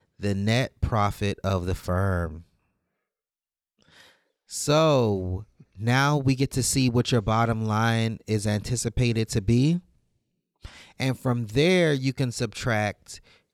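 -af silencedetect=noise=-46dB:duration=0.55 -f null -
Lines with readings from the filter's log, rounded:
silence_start: 2.42
silence_end: 3.82 | silence_duration: 1.40
silence_start: 9.80
silence_end: 10.64 | silence_duration: 0.84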